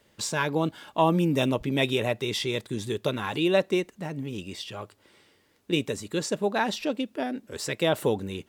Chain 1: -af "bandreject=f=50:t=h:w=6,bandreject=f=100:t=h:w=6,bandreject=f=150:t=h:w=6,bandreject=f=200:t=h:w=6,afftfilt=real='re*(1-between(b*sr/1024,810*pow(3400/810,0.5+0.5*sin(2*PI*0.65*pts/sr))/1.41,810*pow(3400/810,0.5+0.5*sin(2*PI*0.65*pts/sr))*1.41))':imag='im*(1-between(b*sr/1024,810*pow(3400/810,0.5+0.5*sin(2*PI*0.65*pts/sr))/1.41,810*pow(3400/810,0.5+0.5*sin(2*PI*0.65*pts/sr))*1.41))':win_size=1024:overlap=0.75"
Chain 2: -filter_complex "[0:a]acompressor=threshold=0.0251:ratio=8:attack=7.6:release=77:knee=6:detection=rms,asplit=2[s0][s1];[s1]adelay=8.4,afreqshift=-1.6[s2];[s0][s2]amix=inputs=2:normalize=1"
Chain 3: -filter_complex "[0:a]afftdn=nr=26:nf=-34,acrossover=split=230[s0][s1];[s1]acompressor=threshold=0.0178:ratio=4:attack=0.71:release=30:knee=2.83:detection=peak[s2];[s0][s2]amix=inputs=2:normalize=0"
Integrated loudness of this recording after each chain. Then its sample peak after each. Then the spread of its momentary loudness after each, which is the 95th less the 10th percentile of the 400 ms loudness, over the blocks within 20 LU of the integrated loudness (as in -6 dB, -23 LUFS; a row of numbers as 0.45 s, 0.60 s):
-28.5 LUFS, -40.0 LUFS, -34.0 LUFS; -11.0 dBFS, -25.5 dBFS, -20.0 dBFS; 11 LU, 5 LU, 8 LU